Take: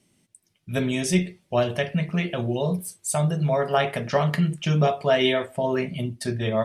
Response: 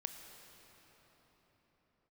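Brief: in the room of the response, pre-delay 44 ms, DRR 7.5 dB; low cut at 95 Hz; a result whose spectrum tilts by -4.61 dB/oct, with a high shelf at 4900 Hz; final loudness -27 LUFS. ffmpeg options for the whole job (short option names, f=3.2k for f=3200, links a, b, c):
-filter_complex "[0:a]highpass=95,highshelf=f=4.9k:g=7,asplit=2[a][b];[1:a]atrim=start_sample=2205,adelay=44[c];[b][c]afir=irnorm=-1:irlink=0,volume=-5.5dB[d];[a][d]amix=inputs=2:normalize=0,volume=-3.5dB"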